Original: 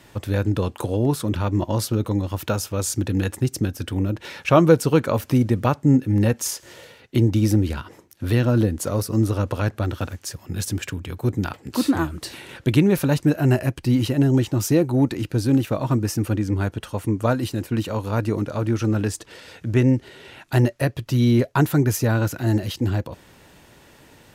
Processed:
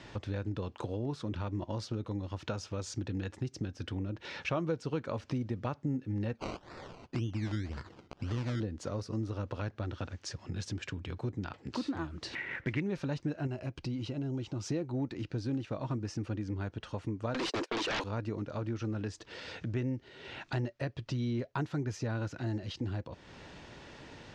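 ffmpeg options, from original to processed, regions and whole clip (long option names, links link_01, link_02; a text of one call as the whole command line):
ffmpeg -i in.wav -filter_complex "[0:a]asettb=1/sr,asplit=3[link_01][link_02][link_03];[link_01]atrim=end=6.354[link_04];[link_02]atrim=start=6.35:end=8.6,asetpts=PTS-STARTPTS,afade=type=in:duration=0.004:curve=qsin,afade=type=out:start_time=2.246:duration=0.004:curve=qsin,equalizer=frequency=600:width=0.7:gain=-6,acrusher=samples=20:mix=1:aa=0.000001:lfo=1:lforange=12:lforate=1.9[link_05];[link_03]atrim=start=8.596[link_06];[link_04][link_05]acrossfade=duration=0.004:curve1=hsin:curve2=qsin[link_07];[link_07][link_06]acrossfade=duration=0.004:curve1=qsin:curve2=hsin,asettb=1/sr,asplit=3[link_08][link_09][link_10];[link_08]atrim=end=12.354[link_11];[link_09]atrim=start=12.35:end=12.8,asetpts=PTS-STARTPTS,afade=type=in:duration=0.004:curve=qsin,afade=type=out:start_time=0.446:duration=0.004:curve=qsin,lowpass=frequency=2000:width_type=q:width=6.7,acrusher=bits=6:mode=log:mix=0:aa=0.000001[link_12];[link_10]atrim=start=12.796[link_13];[link_11][link_12]acrossfade=duration=0.004:curve1=hsin:curve2=qsin[link_14];[link_14][link_13]acrossfade=duration=0.004:curve1=qsin:curve2=hsin,asettb=1/sr,asplit=3[link_15][link_16][link_17];[link_15]atrim=end=13.474[link_18];[link_16]atrim=start=13.47:end=14.66,asetpts=PTS-STARTPTS,afade=type=in:duration=0.004:curve=qsin,afade=type=out:start_time=1.186:duration=0.004:curve=qsin,bandreject=frequency=1800:width=6.1,acompressor=threshold=-30dB:ratio=1.5:attack=3.2:release=140:knee=1:detection=peak[link_19];[link_17]atrim=start=14.656[link_20];[link_18][link_19]acrossfade=duration=0.004:curve1=hsin:curve2=qsin[link_21];[link_21][link_20]acrossfade=duration=0.004:curve1=qsin:curve2=hsin,asettb=1/sr,asplit=3[link_22][link_23][link_24];[link_22]atrim=end=17.344[link_25];[link_23]atrim=start=17.34:end=18.04,asetpts=PTS-STARTPTS,afade=type=in:duration=0.004:curve=qsin,afade=type=out:start_time=0.696:duration=0.004:curve=qsin,agate=range=-33dB:threshold=-32dB:ratio=16:release=100:detection=peak,highpass=frequency=370:width=0.5412,highpass=frequency=370:width=1.3066,aeval=exprs='0.158*sin(PI/2*7.08*val(0)/0.158)':channel_layout=same[link_26];[link_24]atrim=start=18.036[link_27];[link_25][link_26]acrossfade=duration=0.004:curve1=hsin:curve2=qsin[link_28];[link_28][link_27]acrossfade=duration=0.004:curve1=qsin:curve2=hsin,lowpass=frequency=5900:width=0.5412,lowpass=frequency=5900:width=1.3066,acompressor=threshold=-40dB:ratio=2.5" out.wav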